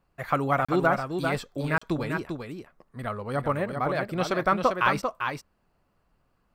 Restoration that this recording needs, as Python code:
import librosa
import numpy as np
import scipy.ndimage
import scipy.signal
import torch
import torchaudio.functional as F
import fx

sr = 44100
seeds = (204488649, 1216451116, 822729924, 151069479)

y = fx.fix_interpolate(x, sr, at_s=(0.65, 1.78), length_ms=35.0)
y = fx.fix_echo_inverse(y, sr, delay_ms=395, level_db=-6.0)